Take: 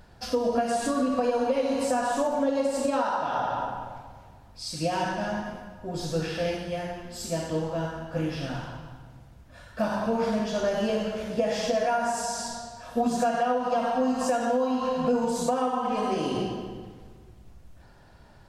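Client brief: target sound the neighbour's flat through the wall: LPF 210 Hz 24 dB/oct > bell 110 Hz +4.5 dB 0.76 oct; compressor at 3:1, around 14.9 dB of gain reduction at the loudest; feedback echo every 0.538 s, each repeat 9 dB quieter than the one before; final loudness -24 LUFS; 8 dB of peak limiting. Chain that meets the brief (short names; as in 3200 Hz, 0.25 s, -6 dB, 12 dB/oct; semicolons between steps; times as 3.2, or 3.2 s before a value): compressor 3:1, threshold -42 dBFS; limiter -34.5 dBFS; LPF 210 Hz 24 dB/oct; bell 110 Hz +4.5 dB 0.76 oct; feedback echo 0.538 s, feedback 35%, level -9 dB; gain +27 dB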